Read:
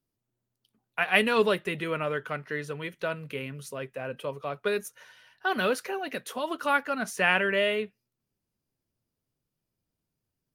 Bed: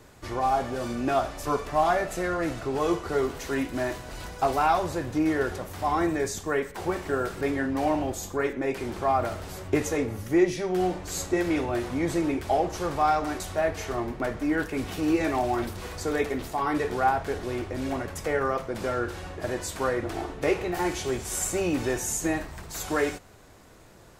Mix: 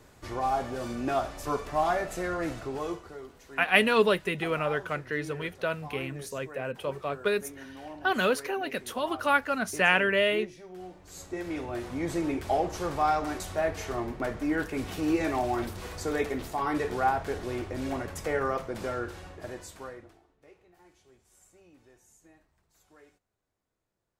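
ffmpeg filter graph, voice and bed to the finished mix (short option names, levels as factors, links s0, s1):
-filter_complex "[0:a]adelay=2600,volume=1.12[s0];[1:a]volume=3.98,afade=t=out:st=2.52:d=0.65:silence=0.188365,afade=t=in:st=10.95:d=1.47:silence=0.16788,afade=t=out:st=18.58:d=1.62:silence=0.0334965[s1];[s0][s1]amix=inputs=2:normalize=0"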